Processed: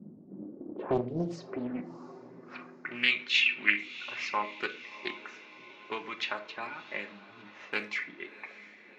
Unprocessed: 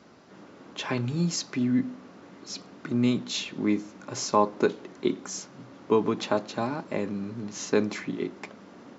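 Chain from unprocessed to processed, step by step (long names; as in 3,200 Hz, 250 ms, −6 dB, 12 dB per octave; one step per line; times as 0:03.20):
0:02.46–0:04.29: parametric band 2,400 Hz +12 dB 0.88 octaves
low-pass that shuts in the quiet parts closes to 480 Hz, open at −22 dBFS
reverb reduction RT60 1.3 s
in parallel at 0 dB: downward compressor, threshold −39 dBFS, peak gain reduction 21 dB
0:07.57–0:08.02: on the sum: floating-point word with a short mantissa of 4 bits
band-pass filter sweep 200 Hz → 2,300 Hz, 0:00.09–0:03.15
on a send: feedback delay with all-pass diffusion 676 ms, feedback 51%, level −15.5 dB
on the sum: rectangular room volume 610 cubic metres, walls furnished, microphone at 0.95 metres
highs frequency-modulated by the lows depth 0.55 ms
level +5 dB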